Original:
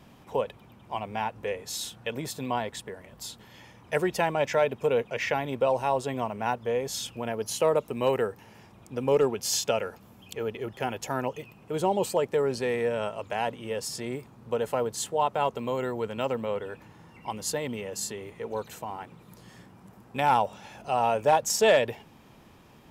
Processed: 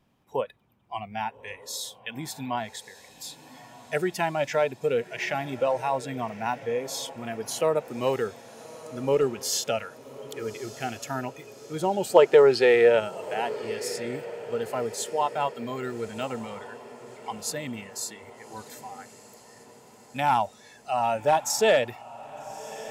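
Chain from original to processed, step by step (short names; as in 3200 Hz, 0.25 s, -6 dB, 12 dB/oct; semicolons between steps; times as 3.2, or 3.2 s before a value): spectral gain 12.15–13, 320–5400 Hz +10 dB; spectral noise reduction 15 dB; diffused feedback echo 1.225 s, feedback 55%, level -16 dB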